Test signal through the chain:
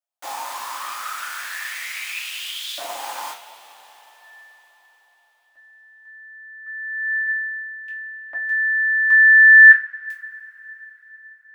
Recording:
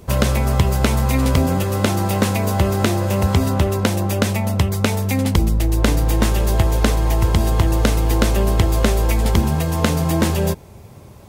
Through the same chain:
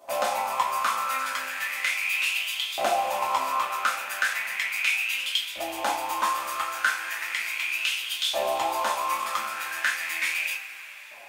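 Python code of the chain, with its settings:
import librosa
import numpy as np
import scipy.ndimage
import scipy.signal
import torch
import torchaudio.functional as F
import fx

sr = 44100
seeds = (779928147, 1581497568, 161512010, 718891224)

y = fx.rattle_buzz(x, sr, strikes_db=-22.0, level_db=-19.0)
y = fx.filter_lfo_highpass(y, sr, shape='saw_up', hz=0.36, low_hz=670.0, high_hz=3600.0, q=7.3)
y = fx.rev_double_slope(y, sr, seeds[0], early_s=0.28, late_s=4.6, knee_db=-22, drr_db=-4.0)
y = y * 10.0 ** (-13.5 / 20.0)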